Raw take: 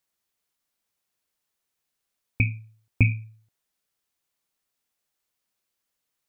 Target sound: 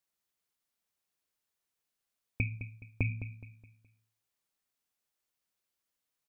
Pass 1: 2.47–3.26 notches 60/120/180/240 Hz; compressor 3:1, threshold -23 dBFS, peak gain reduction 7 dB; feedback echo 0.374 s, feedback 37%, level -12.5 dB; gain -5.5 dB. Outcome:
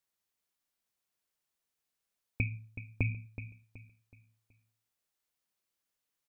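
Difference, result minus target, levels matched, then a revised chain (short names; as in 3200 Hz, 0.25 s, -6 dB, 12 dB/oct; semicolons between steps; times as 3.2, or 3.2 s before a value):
echo 0.164 s late
2.47–3.26 notches 60/120/180/240 Hz; compressor 3:1, threshold -23 dBFS, peak gain reduction 7 dB; feedback echo 0.21 s, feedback 37%, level -12.5 dB; gain -5.5 dB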